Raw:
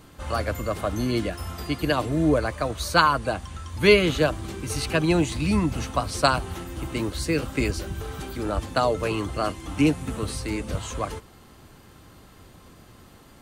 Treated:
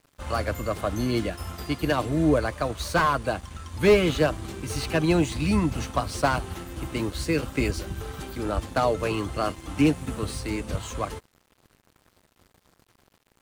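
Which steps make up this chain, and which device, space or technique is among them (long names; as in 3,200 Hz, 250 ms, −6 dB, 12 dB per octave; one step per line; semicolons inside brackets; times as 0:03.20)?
early transistor amplifier (dead-zone distortion −46 dBFS; slew-rate limiting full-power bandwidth 150 Hz)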